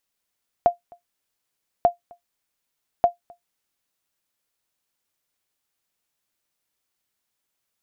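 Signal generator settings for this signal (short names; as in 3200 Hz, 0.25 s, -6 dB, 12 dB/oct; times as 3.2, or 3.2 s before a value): sonar ping 698 Hz, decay 0.13 s, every 1.19 s, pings 3, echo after 0.26 s, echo -29 dB -7 dBFS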